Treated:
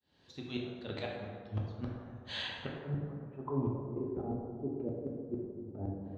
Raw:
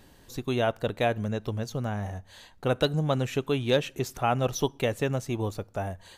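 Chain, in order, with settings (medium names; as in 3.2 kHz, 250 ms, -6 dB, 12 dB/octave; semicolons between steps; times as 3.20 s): fade-in on the opening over 1.94 s; high-pass 90 Hz 12 dB/octave; low-pass that closes with the level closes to 670 Hz, closed at -22 dBFS; compression 2.5:1, threshold -37 dBFS, peak gain reduction 11.5 dB; slow attack 101 ms; low-pass sweep 4 kHz -> 330 Hz, 2.21–4.29 s; inverted gate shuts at -32 dBFS, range -28 dB; plate-style reverb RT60 1.9 s, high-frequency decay 0.45×, DRR -2.5 dB; trim +5.5 dB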